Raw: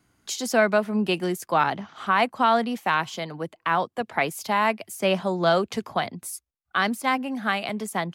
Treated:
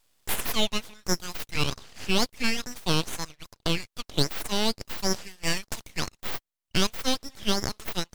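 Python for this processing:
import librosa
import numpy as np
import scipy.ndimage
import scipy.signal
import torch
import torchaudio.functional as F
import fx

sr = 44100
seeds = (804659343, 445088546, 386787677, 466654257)

y = scipy.signal.sosfilt(scipy.signal.butter(4, 1500.0, 'highpass', fs=sr, output='sos'), x)
y = np.abs(y)
y = F.gain(torch.from_numpy(y), 6.0).numpy()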